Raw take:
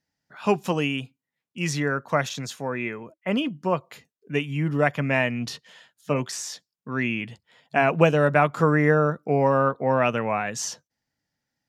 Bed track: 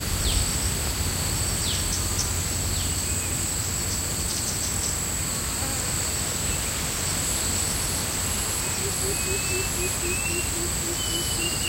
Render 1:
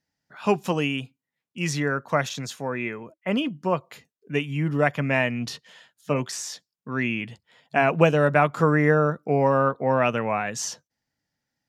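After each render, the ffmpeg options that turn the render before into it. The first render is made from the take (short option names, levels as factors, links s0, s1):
-af anull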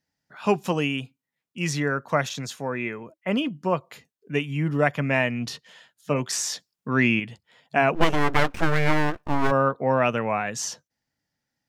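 -filter_complex "[0:a]asettb=1/sr,asplit=3[s0][s1][s2];[s0]atrim=end=6.304[s3];[s1]atrim=start=6.3:end=7.2,asetpts=PTS-STARTPTS,afade=t=in:d=0.004:c=qsin,afade=t=out:st=0.896:d=0.004:c=qsin,acontrast=43[s4];[s2]atrim=start=7.196[s5];[s3][s4]acrossfade=d=0.004:c1=hsin:c2=qsin[s6];[s6][s5]acrossfade=d=0.004:c1=qsin:c2=hsin,asplit=3[s7][s8][s9];[s7]afade=t=out:st=7.94:d=0.02[s10];[s8]aeval=exprs='abs(val(0))':c=same,afade=t=in:st=7.94:d=0.02,afade=t=out:st=9.5:d=0.02[s11];[s9]afade=t=in:st=9.5:d=0.02[s12];[s10][s11][s12]amix=inputs=3:normalize=0"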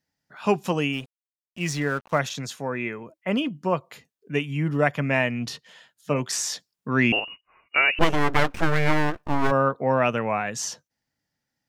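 -filter_complex "[0:a]asplit=3[s0][s1][s2];[s0]afade=t=out:st=0.92:d=0.02[s3];[s1]aeval=exprs='sgn(val(0))*max(abs(val(0))-0.00708,0)':c=same,afade=t=in:st=0.92:d=0.02,afade=t=out:st=2.18:d=0.02[s4];[s2]afade=t=in:st=2.18:d=0.02[s5];[s3][s4][s5]amix=inputs=3:normalize=0,asettb=1/sr,asplit=3[s6][s7][s8];[s6]atrim=end=7.124[s9];[s7]atrim=start=7.12:end=7.99,asetpts=PTS-STARTPTS,afade=t=in:d=0.004:c=qsin,afade=t=out:st=0.866:d=0.004:c=qsin,lowpass=f=2600:t=q:w=0.5098,lowpass=f=2600:t=q:w=0.6013,lowpass=f=2600:t=q:w=0.9,lowpass=f=2600:t=q:w=2.563,afreqshift=-3000[s10];[s8]atrim=start=7.986[s11];[s9][s10]acrossfade=d=0.004:c1=hsin:c2=qsin[s12];[s12][s11]acrossfade=d=0.004:c1=qsin:c2=hsin"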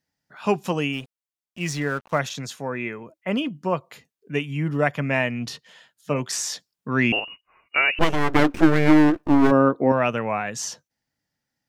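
-filter_complex "[0:a]asettb=1/sr,asplit=3[s0][s1][s2];[s0]atrim=end=8.344[s3];[s1]atrim=start=8.34:end=9.92,asetpts=PTS-STARTPTS,afade=t=in:d=0.004:c=qsin,afade=t=out:st=1.576:d=0.004:c=qsin,equalizer=f=310:t=o:w=0.77:g=14[s4];[s2]atrim=start=9.916[s5];[s3][s4]acrossfade=d=0.004:c1=hsin:c2=qsin[s6];[s6][s5]acrossfade=d=0.004:c1=qsin:c2=hsin"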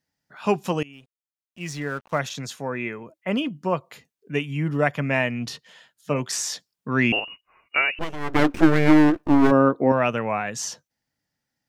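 -filter_complex "[0:a]asplit=4[s0][s1][s2][s3];[s0]atrim=end=0.83,asetpts=PTS-STARTPTS,afade=t=out:st=0.826:d=0.004:c=hsin:silence=0.0749894[s4];[s1]atrim=start=0.83:end=8.03,asetpts=PTS-STARTPTS,afade=t=in:d=1.66:silence=0.0749894,afade=t=out:st=6.93:d=0.27:silence=0.298538[s5];[s2]atrim=start=8.03:end=8.19,asetpts=PTS-STARTPTS,volume=0.299[s6];[s3]atrim=start=8.19,asetpts=PTS-STARTPTS,afade=t=in:d=0.27:silence=0.298538[s7];[s4][s5][s6][s7]concat=n=4:v=0:a=1"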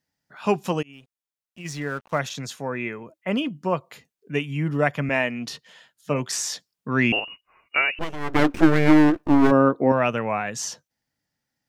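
-filter_complex "[0:a]asplit=3[s0][s1][s2];[s0]afade=t=out:st=0.81:d=0.02[s3];[s1]acompressor=threshold=0.02:ratio=5:attack=3.2:release=140:knee=1:detection=peak,afade=t=in:st=0.81:d=0.02,afade=t=out:st=1.64:d=0.02[s4];[s2]afade=t=in:st=1.64:d=0.02[s5];[s3][s4][s5]amix=inputs=3:normalize=0,asettb=1/sr,asplit=3[s6][s7][s8];[s6]atrim=end=5.094[s9];[s7]atrim=start=5.09:end=5.52,asetpts=PTS-STARTPTS,afade=t=in:d=0.004:c=qsin,afade=t=out:st=0.426:d=0.004:c=qsin,highpass=190[s10];[s8]atrim=start=5.516[s11];[s9][s10]acrossfade=d=0.004:c1=hsin:c2=qsin[s12];[s12][s11]acrossfade=d=0.004:c1=qsin:c2=hsin"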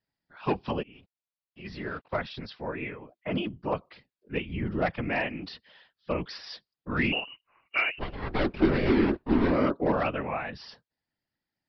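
-af "aresample=11025,asoftclip=type=hard:threshold=0.282,aresample=44100,afftfilt=real='hypot(re,im)*cos(2*PI*random(0))':imag='hypot(re,im)*sin(2*PI*random(1))':win_size=512:overlap=0.75"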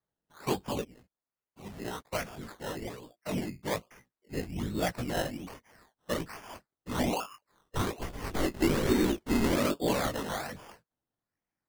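-af "flanger=delay=16:depth=6.1:speed=1,acrusher=samples=15:mix=1:aa=0.000001:lfo=1:lforange=9:lforate=1.2"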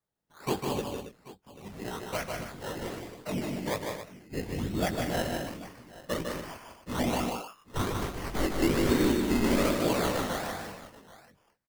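-af "aecho=1:1:66|152|194|273|785:0.126|0.596|0.335|0.282|0.126"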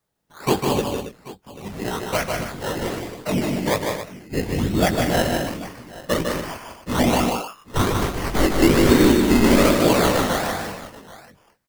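-af "volume=3.35"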